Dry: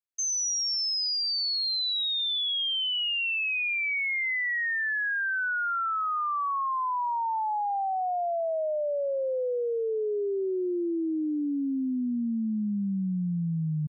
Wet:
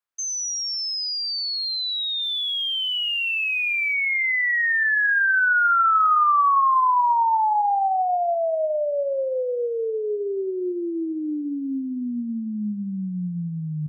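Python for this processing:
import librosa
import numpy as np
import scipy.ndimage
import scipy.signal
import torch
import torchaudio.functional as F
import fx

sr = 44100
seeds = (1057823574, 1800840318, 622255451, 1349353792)

y = fx.peak_eq(x, sr, hz=1200.0, db=11.0, octaves=1.8)
y = fx.dmg_noise_colour(y, sr, seeds[0], colour='white', level_db=-60.0, at=(2.21, 3.93), fade=0.02)
y = fx.rev_spring(y, sr, rt60_s=1.1, pass_ms=(33, 52), chirp_ms=70, drr_db=15.0)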